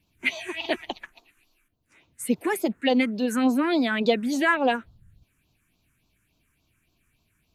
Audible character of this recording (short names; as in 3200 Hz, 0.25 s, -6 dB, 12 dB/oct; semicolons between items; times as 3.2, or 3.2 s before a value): phasing stages 4, 3.5 Hz, lowest notch 690–1800 Hz